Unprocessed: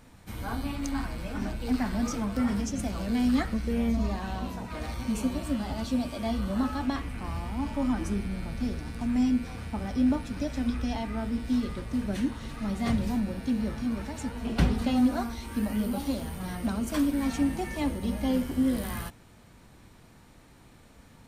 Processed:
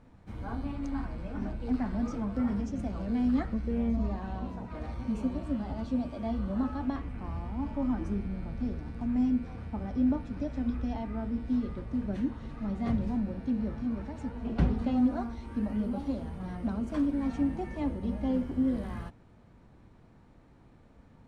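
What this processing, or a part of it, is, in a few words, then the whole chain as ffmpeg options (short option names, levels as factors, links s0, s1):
through cloth: -af "lowpass=7600,highshelf=f=2000:g=-15.5,volume=0.794"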